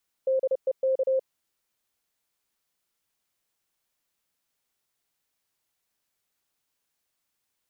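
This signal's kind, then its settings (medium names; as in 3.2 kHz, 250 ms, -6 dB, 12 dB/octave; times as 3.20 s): Morse "DEK" 30 wpm 527 Hz -20.5 dBFS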